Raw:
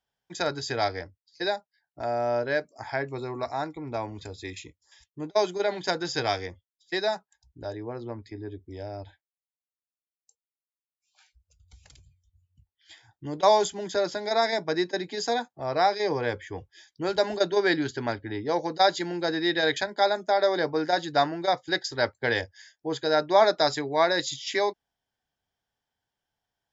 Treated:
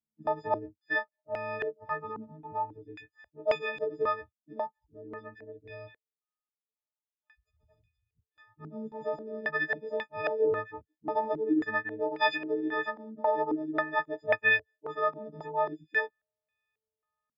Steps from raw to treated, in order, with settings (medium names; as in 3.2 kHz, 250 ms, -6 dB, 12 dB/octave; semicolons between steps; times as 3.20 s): partials quantised in pitch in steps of 6 st; plain phase-vocoder stretch 0.65×; step-sequenced low-pass 3.7 Hz 240–2300 Hz; trim -8 dB